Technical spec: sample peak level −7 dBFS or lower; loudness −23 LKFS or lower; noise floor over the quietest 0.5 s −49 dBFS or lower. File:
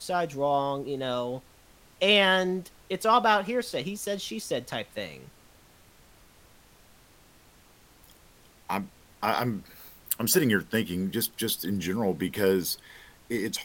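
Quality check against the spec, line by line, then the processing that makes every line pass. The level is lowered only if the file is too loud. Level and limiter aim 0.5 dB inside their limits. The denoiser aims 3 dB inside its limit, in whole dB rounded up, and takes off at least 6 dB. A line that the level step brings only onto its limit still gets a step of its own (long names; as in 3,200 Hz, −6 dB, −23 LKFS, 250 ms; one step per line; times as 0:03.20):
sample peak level −6.0 dBFS: out of spec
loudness −27.5 LKFS: in spec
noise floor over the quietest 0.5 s −57 dBFS: in spec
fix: brickwall limiter −7.5 dBFS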